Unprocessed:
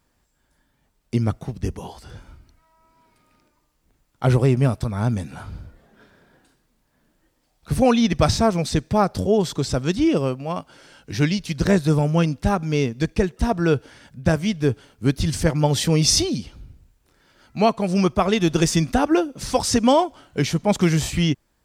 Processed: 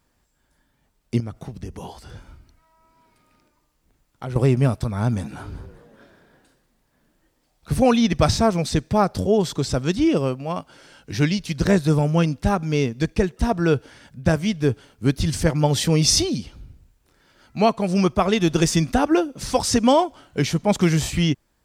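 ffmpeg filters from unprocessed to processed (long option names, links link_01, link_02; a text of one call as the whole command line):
ffmpeg -i in.wav -filter_complex "[0:a]asettb=1/sr,asplit=3[link_01][link_02][link_03];[link_01]atrim=end=1.204[link_04];[link_02]atrim=start=1.2:end=4.36,asetpts=PTS-STARTPTS,afade=type=in:duration=0.004:curve=qsin,afade=type=out:start_time=3.156:duration=0.004:curve=qsin,acompressor=threshold=-29dB:ratio=4:attack=3.2:release=140:knee=1:detection=peak[link_05];[link_03]atrim=start=4.356[link_06];[link_04][link_05]acrossfade=duration=0.004:curve1=hsin:curve2=qsin[link_07];[link_07][link_06]acrossfade=duration=0.004:curve1=qsin:curve2=hsin,asettb=1/sr,asplit=3[link_08][link_09][link_10];[link_08]atrim=end=4.934[link_11];[link_09]atrim=start=4.93:end=7.97,asetpts=PTS-STARTPTS,afade=type=in:duration=0.004:curve=qsin,afade=type=out:start_time=3.036:duration=0.004:curve=qsin,asplit=6[link_12][link_13][link_14][link_15][link_16][link_17];[link_13]adelay=191,afreqshift=88,volume=-19dB[link_18];[link_14]adelay=382,afreqshift=176,volume=-24dB[link_19];[link_15]adelay=573,afreqshift=264,volume=-29.1dB[link_20];[link_16]adelay=764,afreqshift=352,volume=-34.1dB[link_21];[link_17]adelay=955,afreqshift=440,volume=-39.1dB[link_22];[link_12][link_18][link_19][link_20][link_21][link_22]amix=inputs=6:normalize=0,atrim=end_sample=134064[link_23];[link_10]atrim=start=7.966[link_24];[link_11][link_23]acrossfade=duration=0.004:curve1=hsin:curve2=qsin[link_25];[link_25][link_24]acrossfade=duration=0.004:curve1=qsin:curve2=hsin" out.wav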